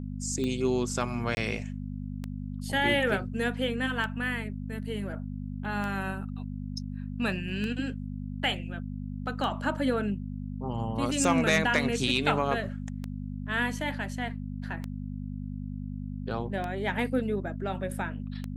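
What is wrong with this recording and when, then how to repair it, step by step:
hum 50 Hz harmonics 5 -36 dBFS
tick 33 1/3 rpm -21 dBFS
1.35–1.37 s: dropout 21 ms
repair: de-click; de-hum 50 Hz, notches 5; interpolate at 1.35 s, 21 ms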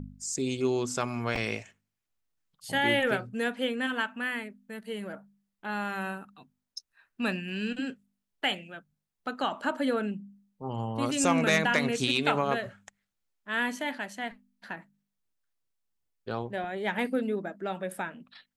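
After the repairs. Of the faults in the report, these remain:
nothing left

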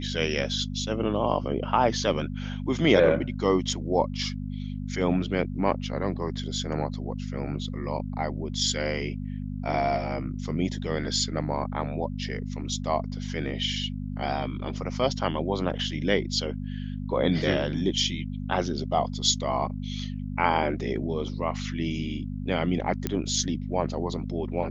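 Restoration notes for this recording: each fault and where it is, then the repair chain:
hum 50 Hz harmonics 5 -33 dBFS
23.07 s: pop -12 dBFS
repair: de-click; de-hum 50 Hz, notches 5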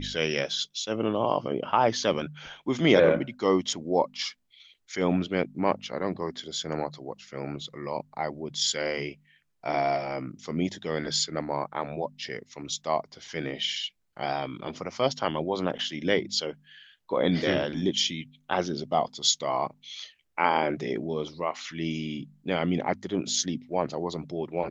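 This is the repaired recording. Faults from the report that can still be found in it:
nothing left

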